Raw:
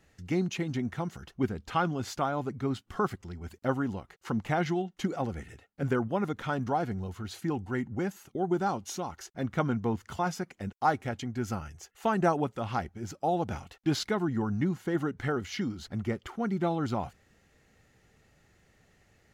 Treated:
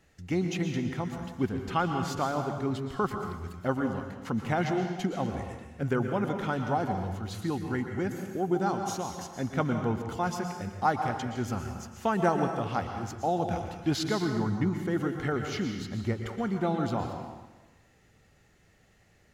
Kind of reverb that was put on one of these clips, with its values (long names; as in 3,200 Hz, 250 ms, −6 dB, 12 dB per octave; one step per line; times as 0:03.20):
dense smooth reverb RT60 1.2 s, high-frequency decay 0.95×, pre-delay 105 ms, DRR 5 dB